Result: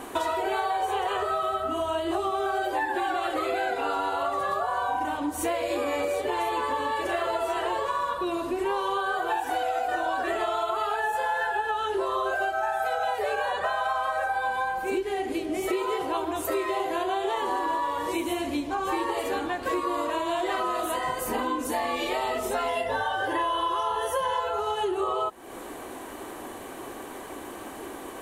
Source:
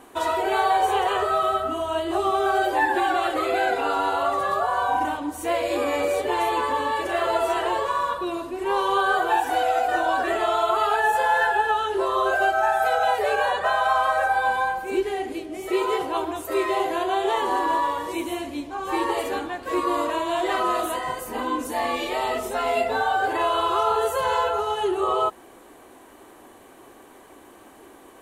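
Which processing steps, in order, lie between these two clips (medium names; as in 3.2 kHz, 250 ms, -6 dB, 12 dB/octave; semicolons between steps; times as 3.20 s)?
22.68–24.40 s: rippled EQ curve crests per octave 1.2, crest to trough 11 dB; compression 6:1, threshold -35 dBFS, peak gain reduction 18 dB; trim +9 dB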